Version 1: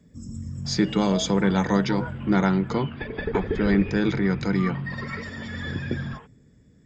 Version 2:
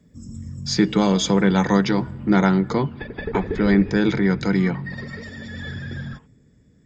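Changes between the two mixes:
speech +4.0 dB; second sound -11.0 dB

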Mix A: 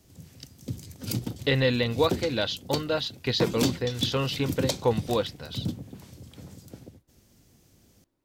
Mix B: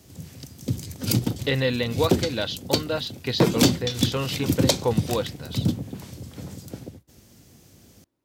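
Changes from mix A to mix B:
background +8.0 dB; master: add high-pass 59 Hz

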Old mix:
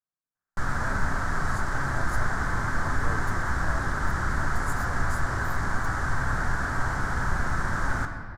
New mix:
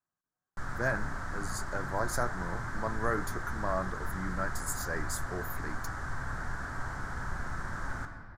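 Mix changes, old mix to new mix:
speech +8.0 dB; background -10.0 dB

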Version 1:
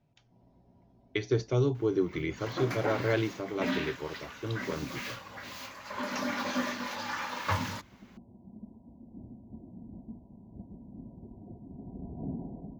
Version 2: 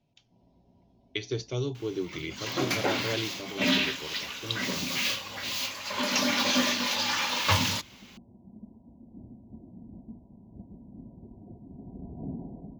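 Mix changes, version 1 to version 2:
speech -4.5 dB; second sound +5.0 dB; master: add resonant high shelf 2.2 kHz +8 dB, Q 1.5

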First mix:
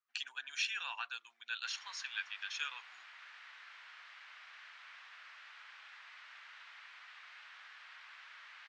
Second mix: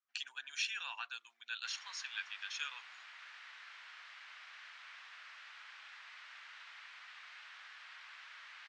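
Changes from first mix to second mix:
speech -3.0 dB; master: add treble shelf 4.2 kHz +5 dB

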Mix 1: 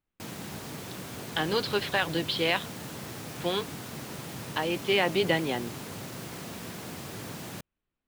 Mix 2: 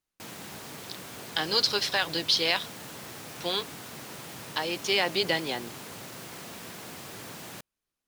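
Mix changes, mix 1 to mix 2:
speech: remove low-pass 3.3 kHz 24 dB/octave; master: add bass shelf 340 Hz -8.5 dB

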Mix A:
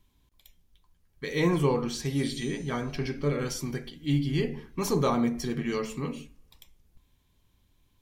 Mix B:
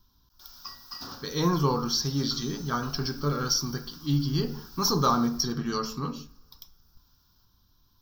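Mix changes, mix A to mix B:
speech: send +6.5 dB; first sound: unmuted; master: add FFT filter 220 Hz 0 dB, 330 Hz -3 dB, 580 Hz -5 dB, 1.4 kHz +9 dB, 2.1 kHz -16 dB, 5.4 kHz +15 dB, 9.4 kHz -29 dB, 14 kHz +12 dB

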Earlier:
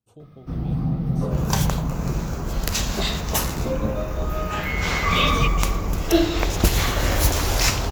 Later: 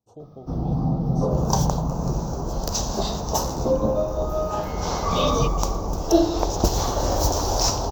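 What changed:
second sound -3.5 dB; master: add FFT filter 160 Hz 0 dB, 880 Hz +9 dB, 2.1 kHz -17 dB, 5.9 kHz +7 dB, 9.8 kHz -15 dB, 16 kHz 0 dB

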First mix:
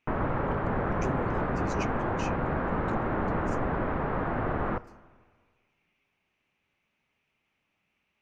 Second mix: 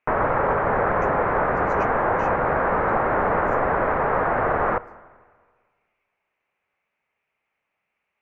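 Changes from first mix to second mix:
speech -9.5 dB; master: add high-order bell 1 kHz +11 dB 2.8 oct

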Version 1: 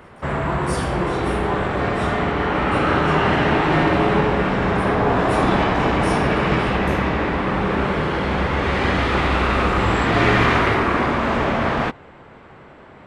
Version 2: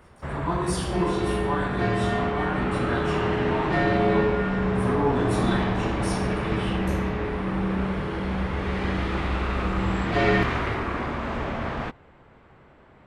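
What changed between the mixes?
first sound -10.5 dB; master: add bass shelf 87 Hz +9.5 dB

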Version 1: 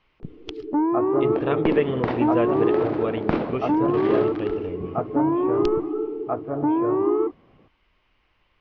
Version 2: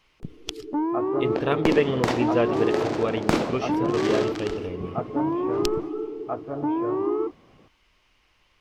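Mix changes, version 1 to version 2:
first sound -4.5 dB; second sound: remove distance through air 160 m; master: remove distance through air 260 m

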